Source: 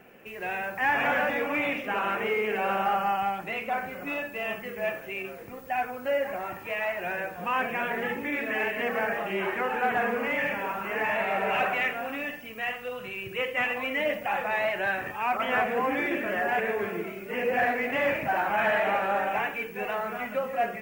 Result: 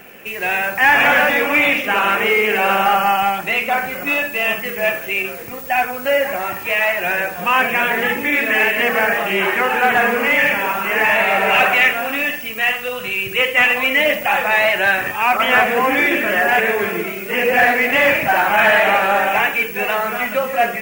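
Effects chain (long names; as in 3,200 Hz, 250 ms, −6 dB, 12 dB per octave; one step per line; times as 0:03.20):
high-shelf EQ 2,100 Hz +11.5 dB
level +9 dB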